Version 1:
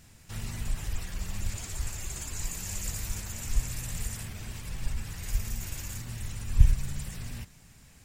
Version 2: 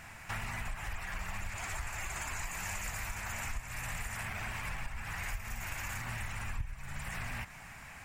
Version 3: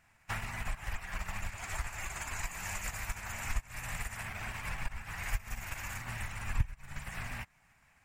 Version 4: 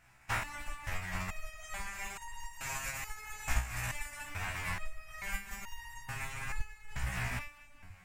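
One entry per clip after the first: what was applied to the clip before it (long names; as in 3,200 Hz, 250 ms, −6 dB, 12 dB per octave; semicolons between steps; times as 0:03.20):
flat-topped bell 1,300 Hz +14.5 dB 2.3 octaves; downward compressor 8 to 1, threshold −36 dBFS, peak gain reduction 25 dB; level +1 dB
expander for the loud parts 2.5 to 1, over −50 dBFS; level +10 dB
echo with a time of its own for lows and highs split 770 Hz, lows 433 ms, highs 198 ms, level −13 dB; step-sequenced resonator 2.3 Hz 62–930 Hz; level +11.5 dB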